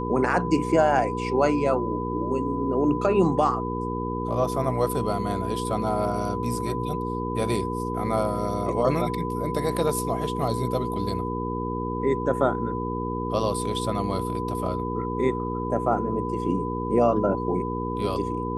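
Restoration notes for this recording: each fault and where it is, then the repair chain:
hum 60 Hz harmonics 8 -30 dBFS
tone 1000 Hz -31 dBFS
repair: notch 1000 Hz, Q 30; de-hum 60 Hz, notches 8

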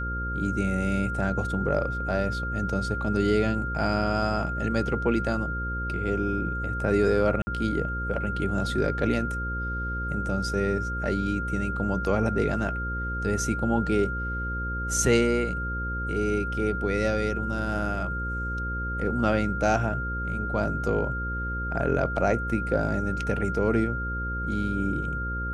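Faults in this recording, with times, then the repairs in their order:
buzz 60 Hz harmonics 9 -32 dBFS
tone 1400 Hz -31 dBFS
7.42–7.47 gap 50 ms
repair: de-hum 60 Hz, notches 9; notch 1400 Hz, Q 30; interpolate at 7.42, 50 ms

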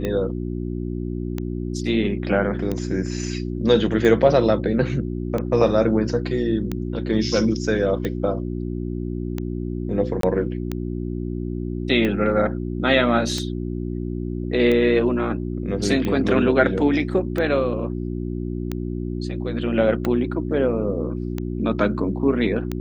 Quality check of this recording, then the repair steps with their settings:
hum 60 Hz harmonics 6 -27 dBFS
tick 45 rpm -13 dBFS
10.21–10.23 gap 23 ms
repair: de-click; de-hum 60 Hz, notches 6; interpolate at 10.21, 23 ms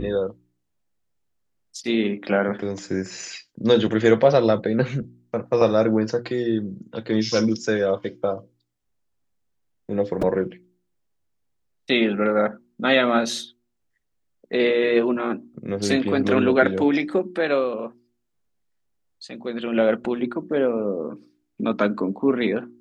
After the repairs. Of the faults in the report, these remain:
none

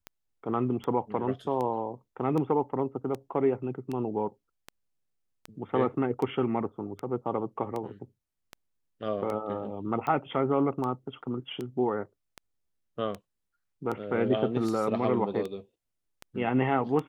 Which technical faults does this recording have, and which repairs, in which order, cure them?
tick 78 rpm -22 dBFS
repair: de-click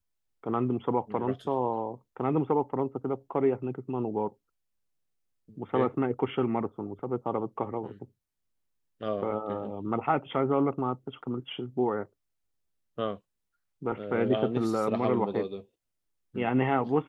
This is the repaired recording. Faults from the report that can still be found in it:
none

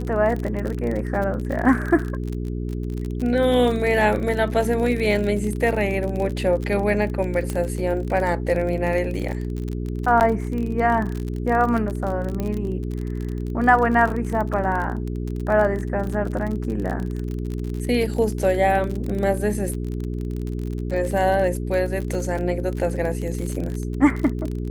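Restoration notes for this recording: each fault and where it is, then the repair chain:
crackle 37/s -26 dBFS
hum 60 Hz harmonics 7 -27 dBFS
7.5 pop -13 dBFS
10.2–10.21 gap 9.1 ms
12.4 pop -14 dBFS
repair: de-click; de-hum 60 Hz, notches 7; interpolate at 10.2, 9.1 ms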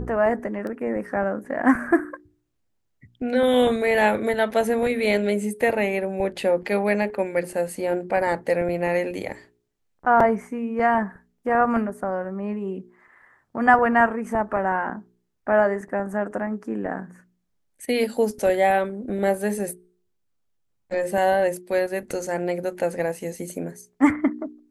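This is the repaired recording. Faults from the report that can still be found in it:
none

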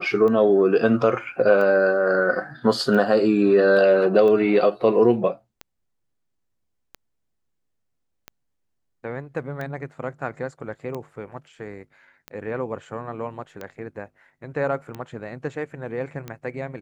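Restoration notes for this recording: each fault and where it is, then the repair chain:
tick 45 rpm -19 dBFS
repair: de-click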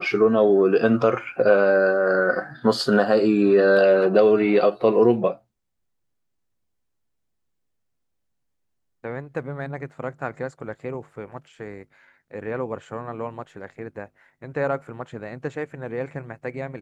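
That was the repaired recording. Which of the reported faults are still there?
none

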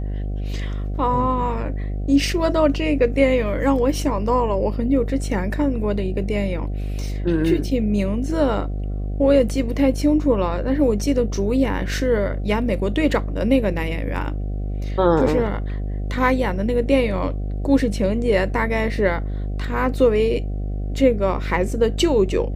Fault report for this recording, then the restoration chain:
buzz 50 Hz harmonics 15 -25 dBFS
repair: de-hum 50 Hz, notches 15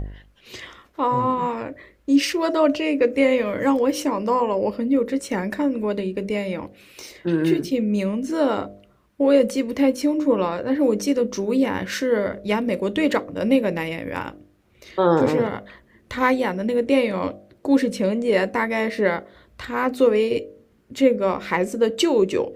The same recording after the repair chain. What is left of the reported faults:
none

